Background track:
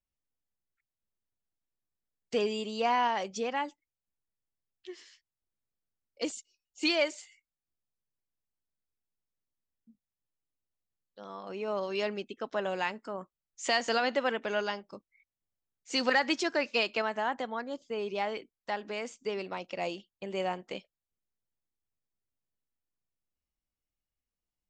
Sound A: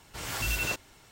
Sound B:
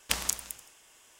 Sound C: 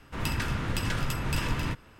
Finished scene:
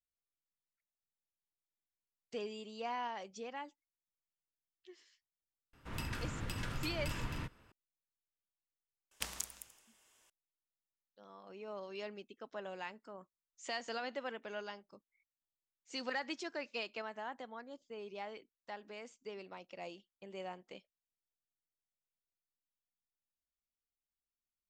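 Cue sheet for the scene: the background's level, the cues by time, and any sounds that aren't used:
background track -12.5 dB
5.73 add C -11 dB
9.11 add B -11.5 dB
not used: A

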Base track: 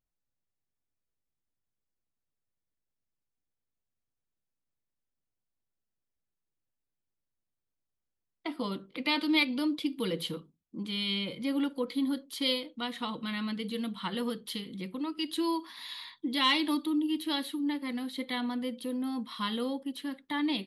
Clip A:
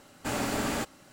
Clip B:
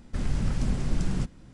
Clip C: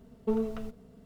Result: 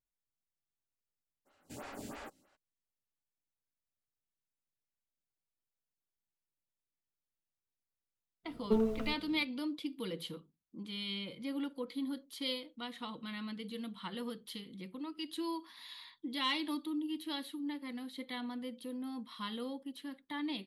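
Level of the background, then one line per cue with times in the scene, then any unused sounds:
base track -8 dB
1.45 add A -13 dB, fades 0.02 s + photocell phaser 3.1 Hz
8.43 add C -1 dB, fades 0.10 s
not used: B

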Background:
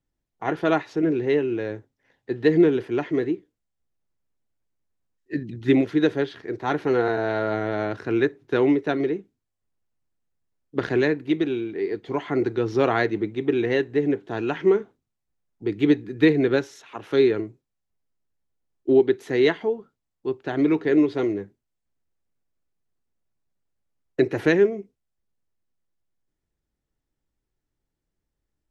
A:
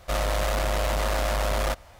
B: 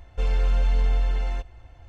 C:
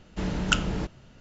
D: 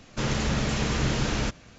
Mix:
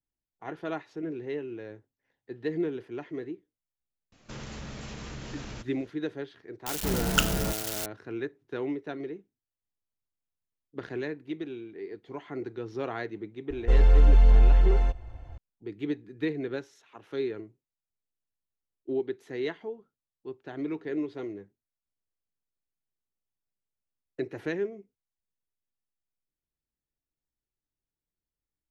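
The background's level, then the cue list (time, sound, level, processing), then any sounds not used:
background -13 dB
4.12 add D -10 dB + compressor 2.5:1, threshold -28 dBFS
6.66 add C -0.5 dB + switching spikes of -20 dBFS
13.5 add B -0.5 dB + tilt shelf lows +4.5 dB, about 1400 Hz
not used: A

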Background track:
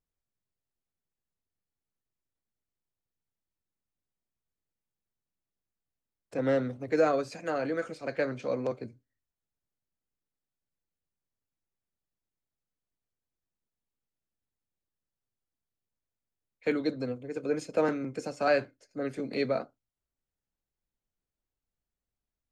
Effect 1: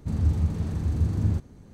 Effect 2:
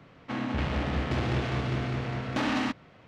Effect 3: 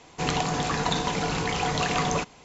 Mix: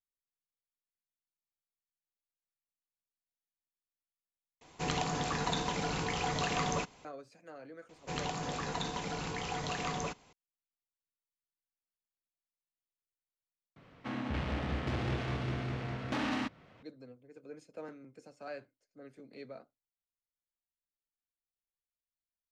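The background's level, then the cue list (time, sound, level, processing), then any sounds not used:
background track -18.5 dB
4.61 replace with 3 -7.5 dB
7.89 add 3 -11 dB
13.76 replace with 2 -6 dB + upward compressor 1.5:1, threshold -46 dBFS
not used: 1

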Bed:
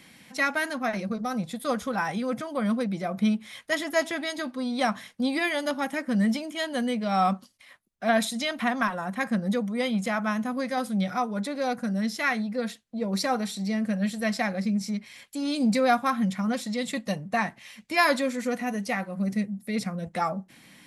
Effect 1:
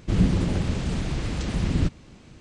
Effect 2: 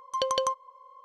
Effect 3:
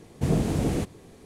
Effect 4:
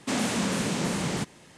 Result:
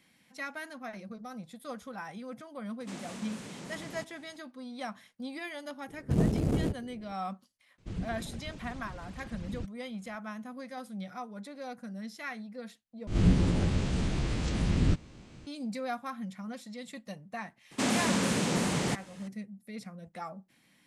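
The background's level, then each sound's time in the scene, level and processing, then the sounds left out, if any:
bed -13.5 dB
2.8 add 4 -8.5 dB + compressor 2:1, threshold -38 dBFS
5.88 add 3 -2.5 dB + Wiener smoothing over 41 samples
7.78 add 1 -16 dB + reverb removal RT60 0.67 s
13.07 replace with 1 -4.5 dB + spectral swells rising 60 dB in 0.37 s
17.71 add 4 -1 dB
not used: 2

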